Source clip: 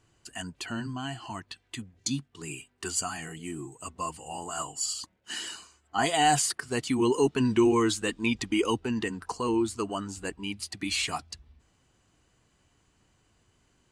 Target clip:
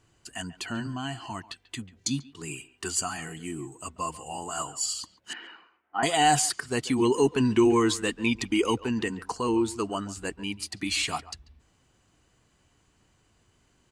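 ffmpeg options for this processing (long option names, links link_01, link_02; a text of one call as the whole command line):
ffmpeg -i in.wav -filter_complex "[0:a]asettb=1/sr,asplit=3[link_01][link_02][link_03];[link_01]atrim=end=5.334[link_04];[link_02]atrim=start=5.33:end=6.03,asetpts=PTS-STARTPTS,afade=type=in:duration=0.004:curve=qsin,afade=type=out:start_time=0.696:duration=0.004:curve=qsin,highpass=350,equalizer=frequency=400:width_type=q:width=4:gain=-4,equalizer=frequency=620:width_type=q:width=4:gain=-6,equalizer=frequency=1100:width_type=q:width=4:gain=-4,equalizer=frequency=1700:width_type=q:width=4:gain=-3,lowpass=frequency=2200:width=0.5412,lowpass=frequency=2200:width=1.3066[link_05];[link_03]atrim=start=6.026[link_06];[link_04][link_05]acrossfade=duration=0.004:curve1=hsin:curve2=qsin[link_07];[link_07][link_06]acrossfade=duration=0.004:curve1=qsin:curve2=hsin,asplit=2[link_08][link_09];[link_09]adelay=140,highpass=300,lowpass=3400,asoftclip=type=hard:threshold=-21dB,volume=-17dB[link_10];[link_08][link_10]amix=inputs=2:normalize=0,volume=1.5dB" out.wav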